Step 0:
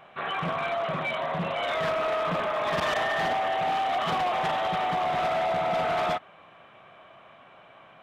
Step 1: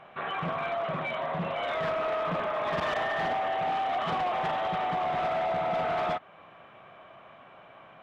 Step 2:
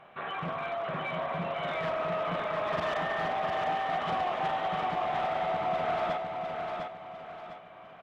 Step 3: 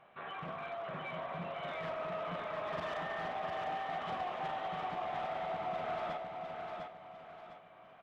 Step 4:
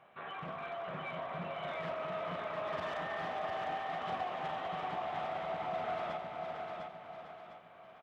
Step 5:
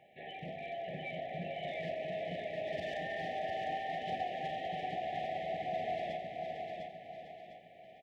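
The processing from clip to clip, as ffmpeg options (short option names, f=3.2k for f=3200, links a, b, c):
-filter_complex "[0:a]asplit=2[a][b];[b]acompressor=threshold=-38dB:ratio=6,volume=-3dB[c];[a][c]amix=inputs=2:normalize=0,lowpass=f=2.8k:p=1,volume=-3.5dB"
-af "aecho=1:1:703|1406|2109|2812|3515:0.596|0.22|0.0815|0.0302|0.0112,volume=-3dB"
-af "flanger=delay=8.3:depth=7.3:regen=-75:speed=1.2:shape=triangular,volume=-3.5dB"
-filter_complex "[0:a]highpass=47,asplit=2[a][b];[b]aecho=0:1:451:0.376[c];[a][c]amix=inputs=2:normalize=0"
-af "afftfilt=real='re*(1-between(b*sr/4096,810,1700))':imag='im*(1-between(b*sr/4096,810,1700))':win_size=4096:overlap=0.75,volume=1dB"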